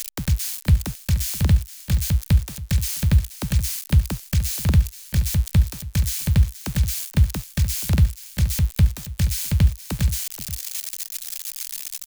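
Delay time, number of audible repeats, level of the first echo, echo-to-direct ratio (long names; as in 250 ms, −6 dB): 476 ms, 1, −13.5 dB, −13.5 dB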